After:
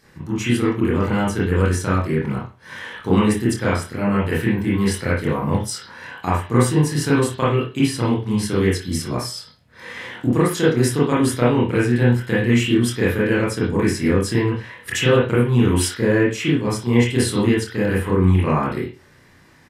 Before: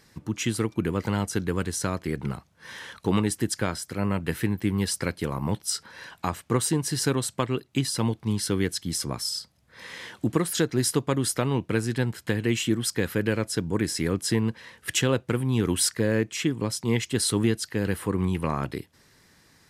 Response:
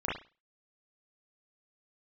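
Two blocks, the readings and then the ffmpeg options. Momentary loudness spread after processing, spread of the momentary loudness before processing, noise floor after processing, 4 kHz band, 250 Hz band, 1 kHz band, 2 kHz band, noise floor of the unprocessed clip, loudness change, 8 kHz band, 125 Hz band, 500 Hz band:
10 LU, 8 LU, -51 dBFS, +2.0 dB, +8.0 dB, +8.5 dB, +8.5 dB, -60 dBFS, +7.5 dB, -0.5 dB, +8.0 dB, +8.5 dB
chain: -filter_complex "[0:a]aecho=1:1:25|56:0.473|0.15[s0];[1:a]atrim=start_sample=2205[s1];[s0][s1]afir=irnorm=-1:irlink=0"

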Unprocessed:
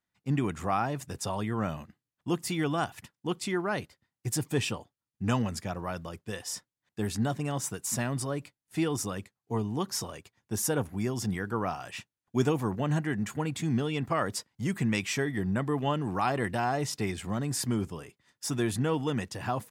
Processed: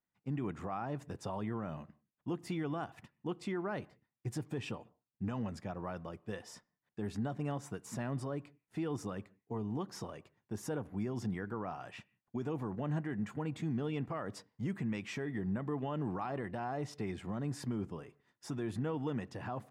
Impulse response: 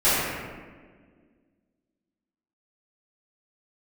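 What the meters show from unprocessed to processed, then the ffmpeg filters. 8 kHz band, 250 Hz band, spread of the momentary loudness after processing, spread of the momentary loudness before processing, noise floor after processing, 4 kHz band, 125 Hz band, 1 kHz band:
-18.5 dB, -7.0 dB, 9 LU, 9 LU, under -85 dBFS, -14.5 dB, -7.5 dB, -10.0 dB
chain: -filter_complex "[0:a]lowpass=f=1300:p=1,equalizer=f=70:w=1.4:g=-6.5,alimiter=level_in=1.19:limit=0.0631:level=0:latency=1:release=112,volume=0.841,asplit=2[s0][s1];[1:a]atrim=start_sample=2205,afade=t=out:st=0.24:d=0.01,atrim=end_sample=11025,lowpass=3500[s2];[s1][s2]afir=irnorm=-1:irlink=0,volume=0.00944[s3];[s0][s3]amix=inputs=2:normalize=0,volume=0.708"

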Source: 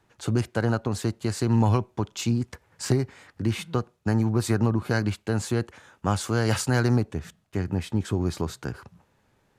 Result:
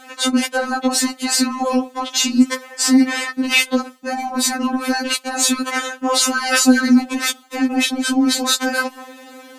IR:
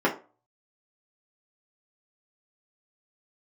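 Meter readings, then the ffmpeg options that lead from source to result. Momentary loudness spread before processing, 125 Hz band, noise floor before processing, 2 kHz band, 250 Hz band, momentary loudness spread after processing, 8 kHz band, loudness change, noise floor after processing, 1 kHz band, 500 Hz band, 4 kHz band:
11 LU, under -25 dB, -67 dBFS, +14.5 dB, +10.0 dB, 8 LU, +17.5 dB, +9.0 dB, -44 dBFS, +11.0 dB, +4.0 dB, +18.0 dB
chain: -af "areverse,acompressor=threshold=0.0282:ratio=8,areverse,highpass=220,alimiter=level_in=47.3:limit=0.891:release=50:level=0:latency=1,afftfilt=real='re*3.46*eq(mod(b,12),0)':imag='im*3.46*eq(mod(b,12),0)':win_size=2048:overlap=0.75,volume=0.75"

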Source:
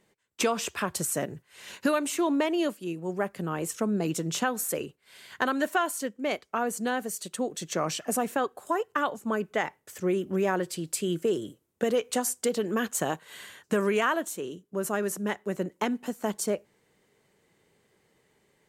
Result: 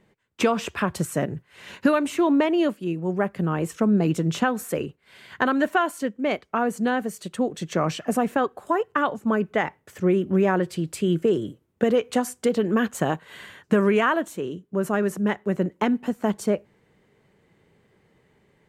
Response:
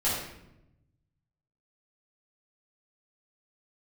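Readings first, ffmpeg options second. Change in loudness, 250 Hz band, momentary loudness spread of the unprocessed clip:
+5.0 dB, +7.5 dB, 8 LU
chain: -af "bass=f=250:g=6,treble=f=4000:g=-11,volume=1.68"

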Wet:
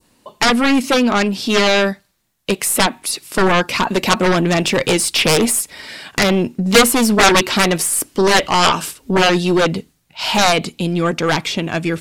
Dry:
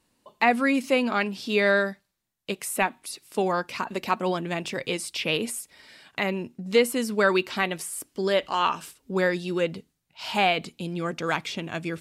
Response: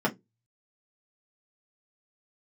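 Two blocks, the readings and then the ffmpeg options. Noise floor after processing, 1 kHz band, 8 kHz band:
-61 dBFS, +10.0 dB, +17.0 dB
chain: -af "adynamicequalizer=threshold=0.0158:dfrequency=2200:dqfactor=0.81:tfrequency=2200:tqfactor=0.81:attack=5:release=100:ratio=0.375:range=1.5:mode=cutabove:tftype=bell,dynaudnorm=f=540:g=11:m=1.68,aeval=exprs='0.531*(cos(1*acos(clip(val(0)/0.531,-1,1)))-cos(1*PI/2))+0.133*(cos(3*acos(clip(val(0)/0.531,-1,1)))-cos(3*PI/2))+0.211*(cos(7*acos(clip(val(0)/0.531,-1,1)))-cos(7*PI/2))+0.0335*(cos(8*acos(clip(val(0)/0.531,-1,1)))-cos(8*PI/2))':c=same,volume=1.78"

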